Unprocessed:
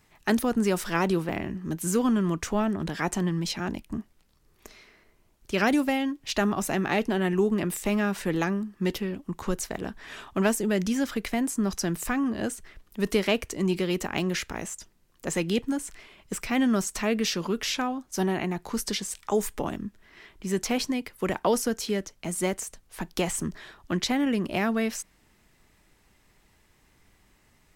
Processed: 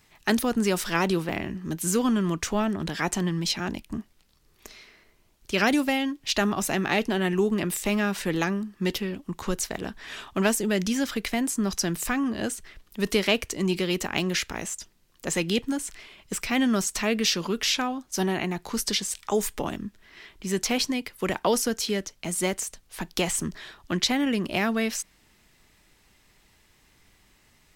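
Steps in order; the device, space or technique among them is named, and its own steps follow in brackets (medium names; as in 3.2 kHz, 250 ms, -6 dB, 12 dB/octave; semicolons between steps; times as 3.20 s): presence and air boost (peaking EQ 3.9 kHz +5.5 dB 1.9 oct; treble shelf 11 kHz +4.5 dB)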